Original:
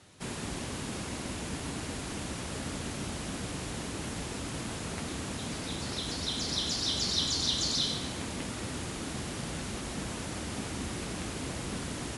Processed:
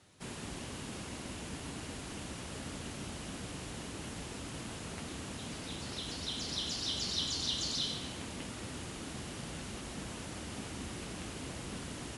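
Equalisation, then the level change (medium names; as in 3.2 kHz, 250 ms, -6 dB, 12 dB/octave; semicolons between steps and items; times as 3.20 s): dynamic bell 2.9 kHz, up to +6 dB, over -52 dBFS, Q 5.3; -6.0 dB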